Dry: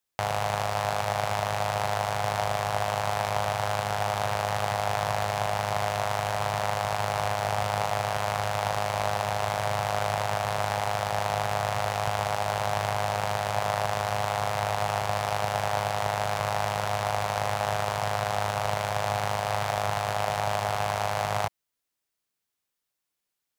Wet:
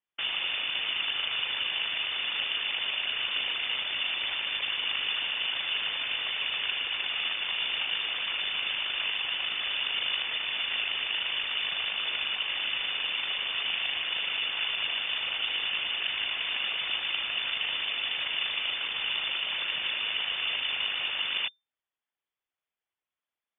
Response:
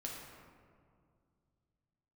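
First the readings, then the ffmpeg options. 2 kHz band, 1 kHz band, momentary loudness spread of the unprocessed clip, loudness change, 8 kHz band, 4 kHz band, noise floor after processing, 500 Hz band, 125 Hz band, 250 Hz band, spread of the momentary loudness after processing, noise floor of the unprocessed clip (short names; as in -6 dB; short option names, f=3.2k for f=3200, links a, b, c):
+2.5 dB, -17.5 dB, 1 LU, -0.5 dB, under -40 dB, +10.5 dB, under -85 dBFS, -21.0 dB, under -25 dB, -14.5 dB, 1 LU, -84 dBFS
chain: -af "afftfilt=real='hypot(re,im)*cos(2*PI*random(0))':imag='hypot(re,im)*sin(2*PI*random(1))':win_size=512:overlap=0.75,lowpass=f=3.1k:t=q:w=0.5098,lowpass=f=3.1k:t=q:w=0.6013,lowpass=f=3.1k:t=q:w=0.9,lowpass=f=3.1k:t=q:w=2.563,afreqshift=-3600,volume=3dB"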